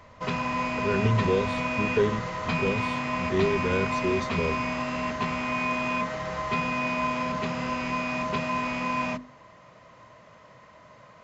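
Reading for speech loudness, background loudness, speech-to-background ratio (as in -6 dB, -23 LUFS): -29.0 LUFS, -28.5 LUFS, -0.5 dB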